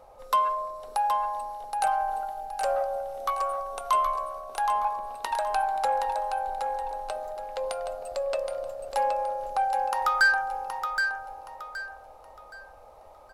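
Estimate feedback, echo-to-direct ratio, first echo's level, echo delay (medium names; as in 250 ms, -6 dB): 32%, -5.5 dB, -6.0 dB, 771 ms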